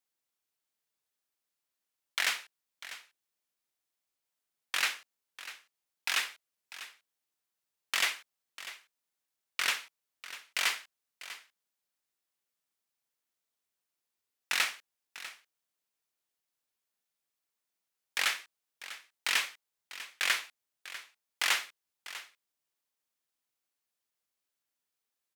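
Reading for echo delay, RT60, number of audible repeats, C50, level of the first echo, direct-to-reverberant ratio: 646 ms, no reverb audible, 1, no reverb audible, −15.0 dB, no reverb audible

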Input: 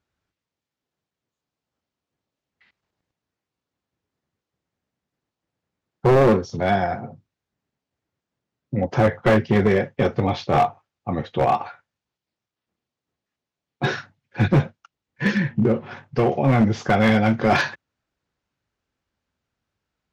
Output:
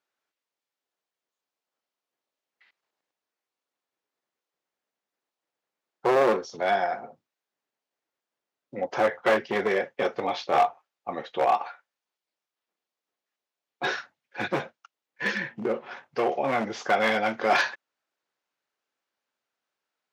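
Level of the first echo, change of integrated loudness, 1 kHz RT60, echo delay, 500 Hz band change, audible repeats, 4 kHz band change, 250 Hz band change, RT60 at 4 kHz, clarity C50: no echo audible, −6.0 dB, no reverb audible, no echo audible, −4.5 dB, no echo audible, −2.0 dB, −13.5 dB, no reverb audible, no reverb audible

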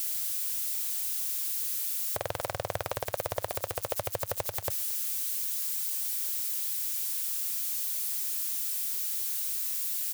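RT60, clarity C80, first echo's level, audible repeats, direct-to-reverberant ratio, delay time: no reverb audible, no reverb audible, −24.0 dB, 1, no reverb audible, 224 ms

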